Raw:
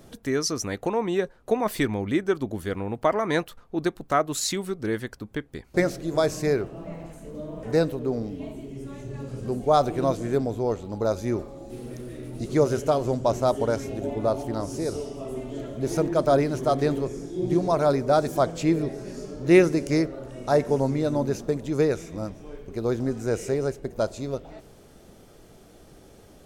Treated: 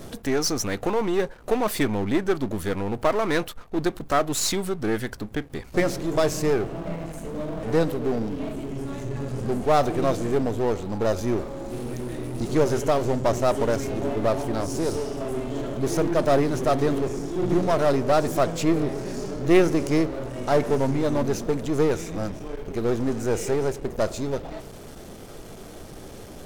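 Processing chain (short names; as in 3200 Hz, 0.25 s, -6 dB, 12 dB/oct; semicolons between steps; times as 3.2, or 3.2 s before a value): half-wave gain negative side -12 dB; power-law curve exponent 0.7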